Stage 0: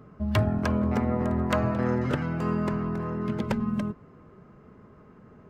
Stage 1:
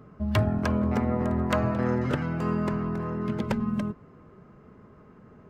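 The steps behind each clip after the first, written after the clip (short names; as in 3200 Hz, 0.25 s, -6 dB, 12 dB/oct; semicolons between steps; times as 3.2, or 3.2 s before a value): nothing audible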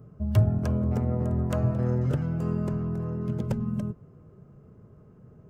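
ten-band EQ 125 Hz +7 dB, 250 Hz -6 dB, 1000 Hz -8 dB, 2000 Hz -11 dB, 4000 Hz -8 dB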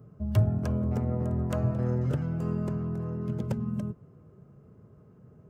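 HPF 59 Hz; gain -2 dB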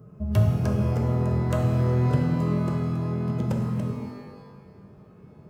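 shimmer reverb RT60 1.2 s, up +12 st, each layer -8 dB, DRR 2 dB; gain +3 dB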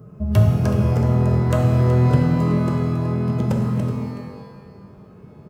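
echo 0.374 s -13.5 dB; gain +5.5 dB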